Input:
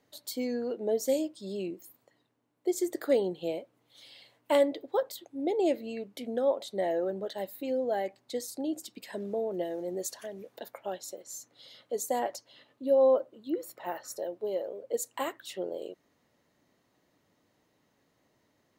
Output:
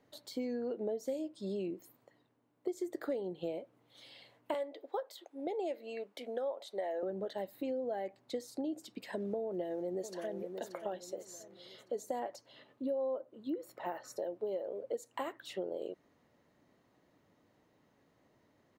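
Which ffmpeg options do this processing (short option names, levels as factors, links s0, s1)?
-filter_complex "[0:a]asettb=1/sr,asplit=3[s0][s1][s2];[s0]atrim=end=4.544[s3];[s1]atrim=start=4.54:end=7.03,asetpts=PTS-STARTPTS,afade=t=in:d=0.004:c=qsin,afade=t=out:st=2.486:d=0.004:c=qsin,highpass=510[s4];[s2]atrim=start=7.026[s5];[s3][s4]acrossfade=d=0.004:c1=hsin:c2=qsin[s6];[s6][s5]acrossfade=d=0.004:c1=qsin:c2=hsin,asplit=2[s7][s8];[s8]afade=t=in:st=9.45:d=0.01,afade=t=out:st=10.41:d=0.01,aecho=0:1:580|1160|1740|2320:0.281838|0.112735|0.0450941|0.0180377[s9];[s7][s9]amix=inputs=2:normalize=0,acompressor=threshold=0.0158:ratio=6,highshelf=f=3000:g=-9.5,acrossover=split=7000[s10][s11];[s11]acompressor=threshold=0.00126:ratio=4:attack=1:release=60[s12];[s10][s12]amix=inputs=2:normalize=0,volume=1.26"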